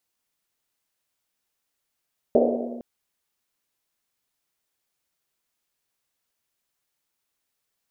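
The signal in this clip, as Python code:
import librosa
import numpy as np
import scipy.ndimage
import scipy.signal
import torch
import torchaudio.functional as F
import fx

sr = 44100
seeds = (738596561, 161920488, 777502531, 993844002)

y = fx.risset_drum(sr, seeds[0], length_s=0.46, hz=240.0, decay_s=2.1, noise_hz=520.0, noise_width_hz=320.0, noise_pct=60)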